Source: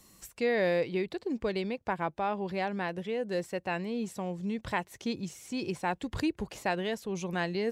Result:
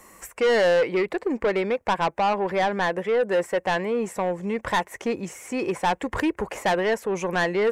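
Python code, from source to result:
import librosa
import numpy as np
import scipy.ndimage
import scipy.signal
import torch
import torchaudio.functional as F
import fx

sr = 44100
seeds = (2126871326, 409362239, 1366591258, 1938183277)

y = fx.graphic_eq_10(x, sr, hz=(125, 500, 1000, 2000, 4000, 8000), db=(-7, 8, 8, 11, -11, 4))
y = 10.0 ** (-22.0 / 20.0) * np.tanh(y / 10.0 ** (-22.0 / 20.0))
y = y * 10.0 ** (5.5 / 20.0)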